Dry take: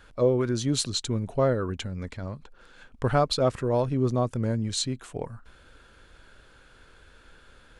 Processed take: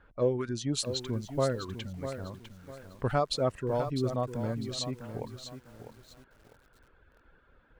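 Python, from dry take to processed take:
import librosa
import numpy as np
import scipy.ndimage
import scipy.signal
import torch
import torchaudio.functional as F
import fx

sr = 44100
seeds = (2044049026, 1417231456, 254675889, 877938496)

y = fx.cheby_harmonics(x, sr, harmonics=(7,), levels_db=(-43,), full_scale_db=-10.5)
y = fx.env_lowpass(y, sr, base_hz=1600.0, full_db=-20.5)
y = fx.dereverb_blind(y, sr, rt60_s=0.78)
y = fx.echo_crushed(y, sr, ms=651, feedback_pct=35, bits=8, wet_db=-9.5)
y = y * librosa.db_to_amplitude(-4.5)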